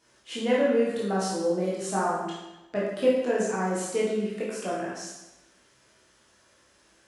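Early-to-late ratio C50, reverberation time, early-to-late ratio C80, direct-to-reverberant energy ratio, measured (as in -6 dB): 0.5 dB, 1.0 s, 3.5 dB, -7.0 dB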